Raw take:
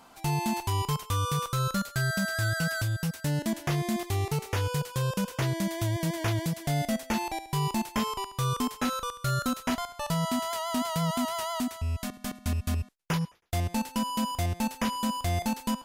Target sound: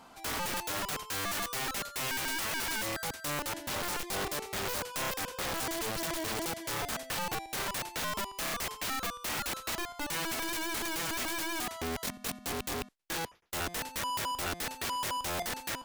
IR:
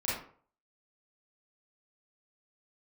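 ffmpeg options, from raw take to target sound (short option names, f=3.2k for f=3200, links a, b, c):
-af "highshelf=f=8.6k:g=-5.5,aeval=exprs='(mod(29.9*val(0)+1,2)-1)/29.9':c=same"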